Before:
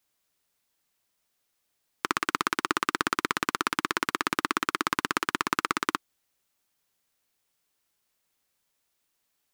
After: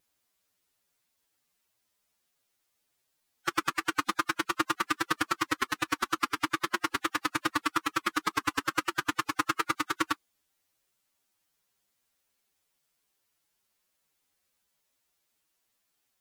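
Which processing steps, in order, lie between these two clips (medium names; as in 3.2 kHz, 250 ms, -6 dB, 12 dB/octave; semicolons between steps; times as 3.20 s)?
wow and flutter 16 cents; time stretch by phase-locked vocoder 1.7×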